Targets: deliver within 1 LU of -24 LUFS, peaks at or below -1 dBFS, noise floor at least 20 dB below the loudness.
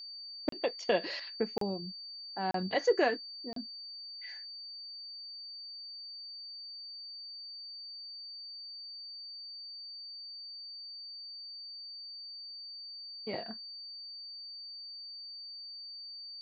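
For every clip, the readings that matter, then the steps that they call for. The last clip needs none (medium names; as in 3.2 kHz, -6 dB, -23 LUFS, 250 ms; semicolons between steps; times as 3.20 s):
dropouts 4; longest dropout 33 ms; steady tone 4.6 kHz; tone level -43 dBFS; loudness -38.5 LUFS; peak level -15.5 dBFS; loudness target -24.0 LUFS
-> interpolate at 0.49/1.58/2.51/3.53 s, 33 ms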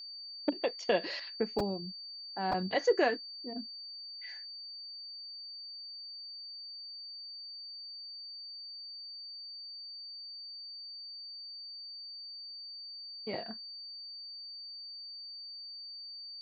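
dropouts 0; steady tone 4.6 kHz; tone level -43 dBFS
-> band-stop 4.6 kHz, Q 30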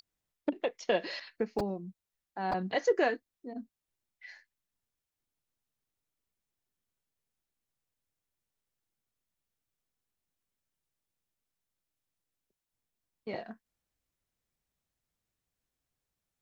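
steady tone not found; loudness -34.0 LUFS; peak level -16.0 dBFS; loudness target -24.0 LUFS
-> trim +10 dB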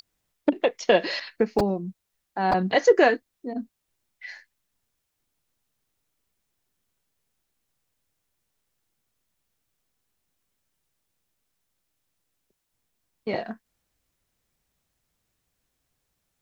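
loudness -24.0 LUFS; peak level -6.0 dBFS; noise floor -79 dBFS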